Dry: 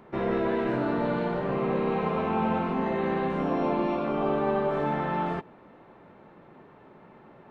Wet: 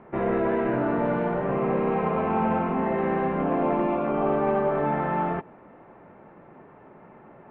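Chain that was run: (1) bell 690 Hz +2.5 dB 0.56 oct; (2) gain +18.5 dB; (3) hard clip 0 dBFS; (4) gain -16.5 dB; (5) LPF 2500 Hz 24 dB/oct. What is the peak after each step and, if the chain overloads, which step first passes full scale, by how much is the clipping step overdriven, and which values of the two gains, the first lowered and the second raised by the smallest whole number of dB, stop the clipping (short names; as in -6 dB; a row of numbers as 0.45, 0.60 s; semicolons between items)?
-14.0, +4.5, 0.0, -16.5, -15.5 dBFS; step 2, 4.5 dB; step 2 +13.5 dB, step 4 -11.5 dB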